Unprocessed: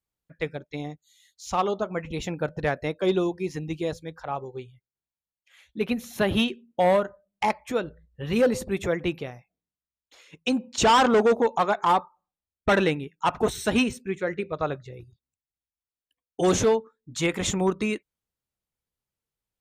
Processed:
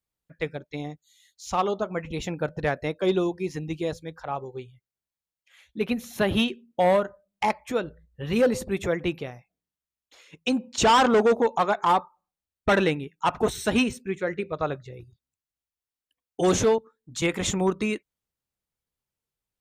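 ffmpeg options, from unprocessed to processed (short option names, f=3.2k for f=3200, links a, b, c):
-filter_complex "[0:a]asettb=1/sr,asplit=3[a][b][c];[a]atrim=end=16.784[d];[b]atrim=start=16.78:end=17.22,asetpts=PTS-STARTPTS,afade=t=in:d=0.004:c=qsin,afade=t=out:st=0.436:d=0.004:c=qsin,acrossover=split=120|3000[e][f][g];[f]acompressor=threshold=-44dB:ratio=6:attack=3.2:release=140:knee=2.83:detection=peak[h];[e][h][g]amix=inputs=3:normalize=0[i];[c]atrim=start=17.216[j];[d][i]acrossfade=d=0.004:c1=hsin:c2=qsin[k];[k][j]acrossfade=d=0.004:c1=qsin:c2=hsin"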